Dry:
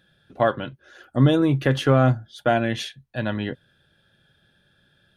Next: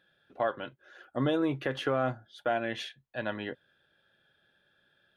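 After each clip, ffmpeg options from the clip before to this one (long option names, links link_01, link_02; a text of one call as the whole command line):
ffmpeg -i in.wav -af "bass=frequency=250:gain=-13,treble=frequency=4000:gain=-9,alimiter=limit=-13.5dB:level=0:latency=1:release=186,volume=-4.5dB" out.wav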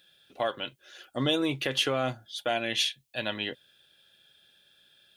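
ffmpeg -i in.wav -af "aexciter=amount=5.3:drive=4.3:freq=2300" out.wav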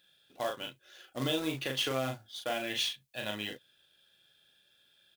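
ffmpeg -i in.wav -filter_complex "[0:a]acrusher=bits=3:mode=log:mix=0:aa=0.000001,asplit=2[link_01][link_02];[link_02]adelay=38,volume=-4dB[link_03];[link_01][link_03]amix=inputs=2:normalize=0,volume=-6.5dB" out.wav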